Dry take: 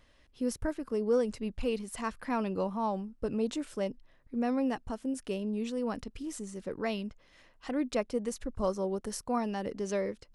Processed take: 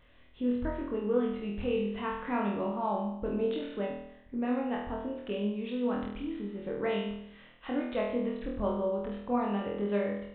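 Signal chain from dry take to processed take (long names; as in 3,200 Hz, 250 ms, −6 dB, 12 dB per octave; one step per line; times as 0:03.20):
in parallel at −2 dB: downward compressor, threshold −40 dBFS, peak gain reduction 16 dB
on the sum: downsampling to 8,000 Hz
pitch vibrato 9.4 Hz 8.1 cents
flutter between parallel walls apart 4.2 metres, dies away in 0.76 s
level −4.5 dB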